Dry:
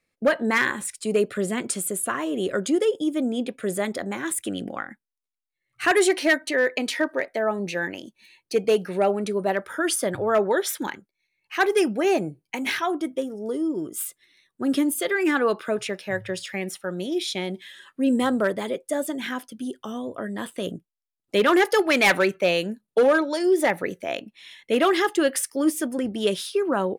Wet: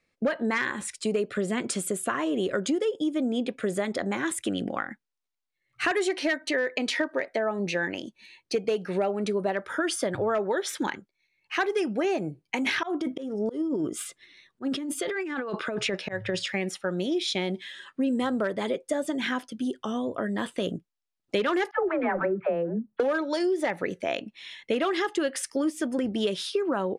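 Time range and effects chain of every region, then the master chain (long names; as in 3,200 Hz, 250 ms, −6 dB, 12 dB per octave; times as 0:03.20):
0:12.75–0:16.48: high-shelf EQ 8,200 Hz −8.5 dB + volume swells 239 ms + compressor whose output falls as the input rises −30 dBFS
0:21.71–0:23.00: one scale factor per block 7 bits + low-pass filter 1,500 Hz 24 dB per octave + all-pass dispersion lows, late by 91 ms, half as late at 540 Hz
whole clip: low-pass filter 6,800 Hz 12 dB per octave; downward compressor, threshold −26 dBFS; level +2.5 dB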